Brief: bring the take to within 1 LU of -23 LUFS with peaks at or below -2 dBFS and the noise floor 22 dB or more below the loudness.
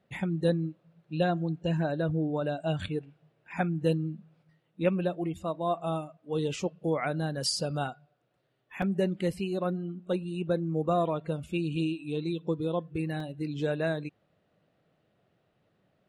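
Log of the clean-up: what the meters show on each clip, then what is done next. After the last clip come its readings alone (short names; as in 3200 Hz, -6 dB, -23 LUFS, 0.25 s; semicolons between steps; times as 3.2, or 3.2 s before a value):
dropouts 2; longest dropout 2.7 ms; loudness -31.0 LUFS; peak -14.0 dBFS; loudness target -23.0 LUFS
-> interpolate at 8.82/13.2, 2.7 ms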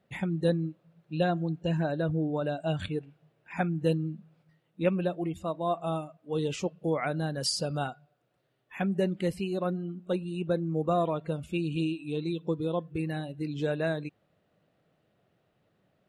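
dropouts 0; loudness -31.0 LUFS; peak -14.0 dBFS; loudness target -23.0 LUFS
-> gain +8 dB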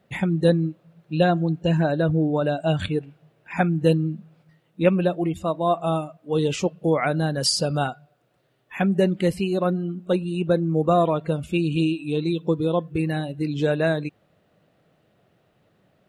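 loudness -23.0 LUFS; peak -6.0 dBFS; noise floor -65 dBFS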